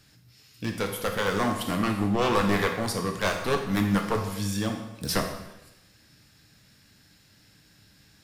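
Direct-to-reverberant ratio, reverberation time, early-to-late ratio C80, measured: 2.5 dB, 0.95 s, 8.5 dB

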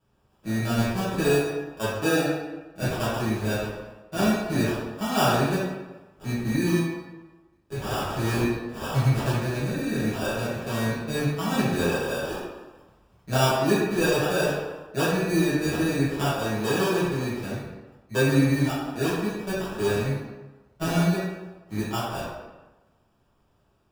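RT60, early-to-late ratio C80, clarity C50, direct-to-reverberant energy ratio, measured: 1.2 s, 2.0 dB, -1.0 dB, -11.0 dB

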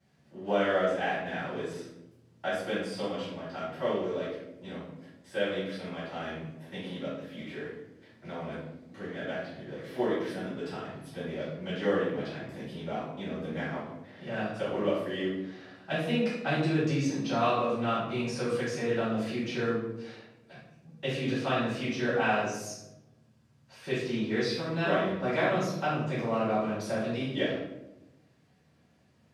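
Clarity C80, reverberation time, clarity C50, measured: 4.5 dB, 0.90 s, 0.5 dB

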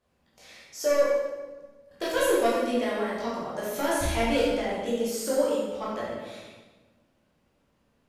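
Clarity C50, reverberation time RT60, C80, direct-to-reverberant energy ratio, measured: -1.0 dB, 1.3 s, 2.0 dB, -8.0 dB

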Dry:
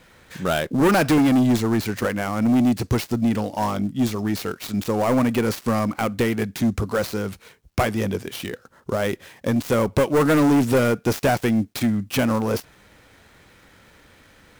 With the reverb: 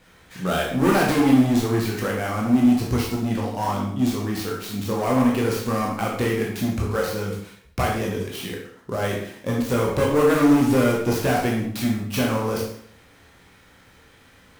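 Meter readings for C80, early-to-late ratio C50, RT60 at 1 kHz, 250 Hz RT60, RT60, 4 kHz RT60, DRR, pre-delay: 7.0 dB, 3.5 dB, 0.60 s, 0.60 s, 0.60 s, 0.60 s, -2.5 dB, 7 ms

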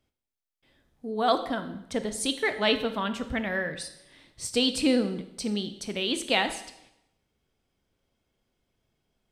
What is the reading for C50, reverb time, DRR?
11.0 dB, 0.80 s, 8.5 dB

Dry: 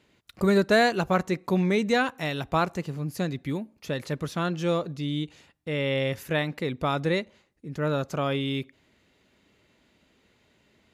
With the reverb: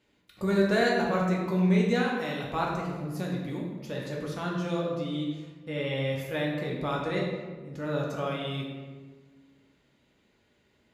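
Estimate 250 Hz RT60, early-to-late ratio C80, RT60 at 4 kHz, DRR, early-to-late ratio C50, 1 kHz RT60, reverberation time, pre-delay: 1.8 s, 4.0 dB, 0.85 s, -3.0 dB, 1.5 dB, 1.3 s, 1.4 s, 3 ms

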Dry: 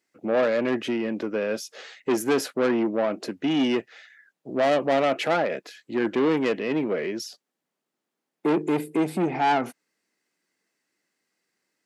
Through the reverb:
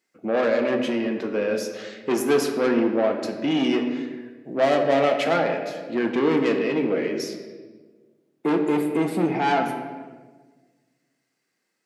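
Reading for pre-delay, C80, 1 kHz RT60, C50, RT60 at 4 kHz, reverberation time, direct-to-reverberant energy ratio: 4 ms, 8.0 dB, 1.2 s, 6.5 dB, 0.95 s, 1.5 s, 3.0 dB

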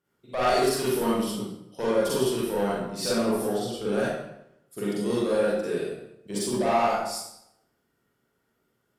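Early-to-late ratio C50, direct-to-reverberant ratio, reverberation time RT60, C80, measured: -4.0 dB, -8.0 dB, 0.80 s, 1.5 dB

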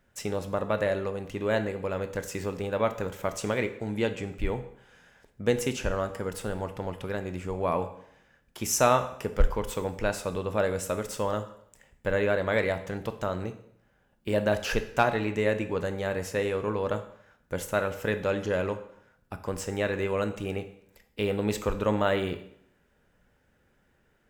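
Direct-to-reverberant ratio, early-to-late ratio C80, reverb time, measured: 9.0 dB, 15.5 dB, 0.70 s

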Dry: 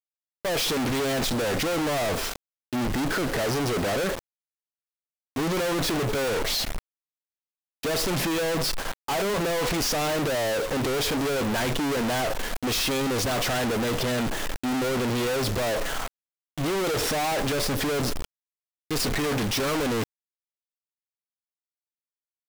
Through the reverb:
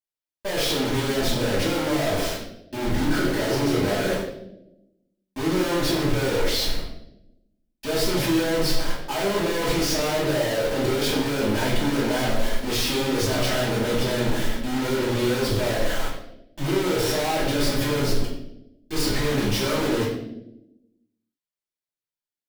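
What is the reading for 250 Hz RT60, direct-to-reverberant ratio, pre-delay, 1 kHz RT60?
1.3 s, -8.5 dB, 3 ms, 0.65 s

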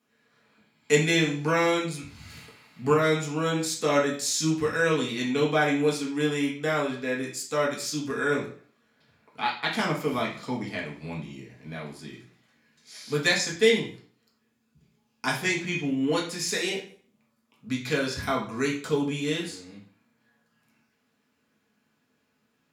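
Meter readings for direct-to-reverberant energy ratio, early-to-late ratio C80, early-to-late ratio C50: -4.0 dB, 12.0 dB, 7.0 dB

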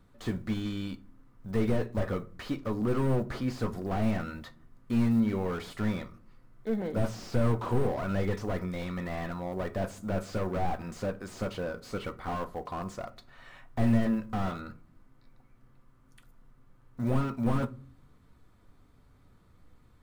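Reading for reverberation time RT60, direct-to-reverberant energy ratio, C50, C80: 0.50 s, 11.0 dB, 21.0 dB, 26.0 dB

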